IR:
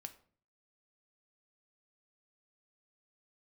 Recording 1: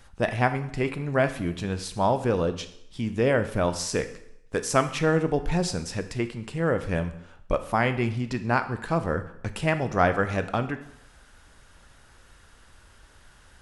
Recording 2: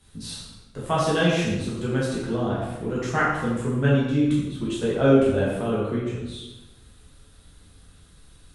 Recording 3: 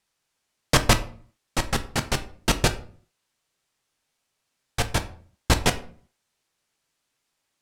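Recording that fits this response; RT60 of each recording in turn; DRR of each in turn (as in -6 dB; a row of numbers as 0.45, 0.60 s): 3; 0.75, 1.0, 0.45 s; 9.5, -8.0, 8.0 dB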